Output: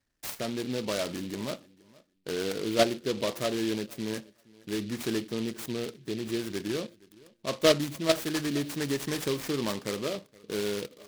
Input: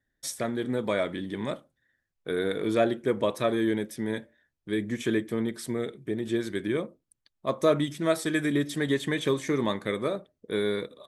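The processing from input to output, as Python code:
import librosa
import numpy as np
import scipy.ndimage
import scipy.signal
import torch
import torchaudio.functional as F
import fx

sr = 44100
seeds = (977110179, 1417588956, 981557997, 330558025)

p1 = fx.level_steps(x, sr, step_db=21)
p2 = x + F.gain(torch.from_numpy(p1), 3.0).numpy()
p3 = fx.echo_feedback(p2, sr, ms=470, feedback_pct=16, wet_db=-23.5)
p4 = fx.noise_mod_delay(p3, sr, seeds[0], noise_hz=3200.0, depth_ms=0.1)
y = F.gain(torch.from_numpy(p4), -5.5).numpy()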